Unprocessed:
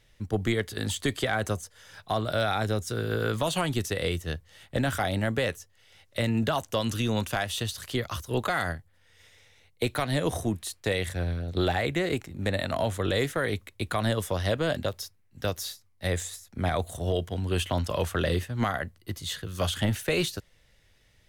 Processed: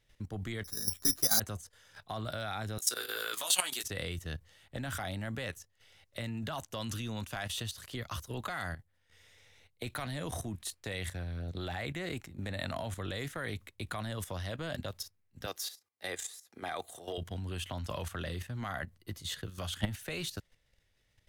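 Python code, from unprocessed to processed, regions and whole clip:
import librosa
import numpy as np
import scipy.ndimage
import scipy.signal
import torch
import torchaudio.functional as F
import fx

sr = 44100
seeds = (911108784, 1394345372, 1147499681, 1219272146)

y = fx.chain(x, sr, fx.lowpass(hz=1700.0, slope=24),
    fx.resample_bad(factor=8, down='none', up='zero_stuff'),
    fx.ensemble(), at=(0.64, 1.4))
y = fx.chain(y, sr, fx.highpass(hz=330.0, slope=12),
    fx.tilt_eq(slope=4.0),
    fx.doubler(ms=16.0, db=-5), at=(2.78, 3.84))
y = fx.chain(y, sr, fx.highpass(hz=320.0, slope=12),
    fx.comb(ms=2.5, depth=0.32), at=(15.46, 17.18))
y = fx.dynamic_eq(y, sr, hz=440.0, q=1.4, threshold_db=-40.0, ratio=4.0, max_db=-6)
y = fx.level_steps(y, sr, step_db=12)
y = y * librosa.db_to_amplitude(-1.5)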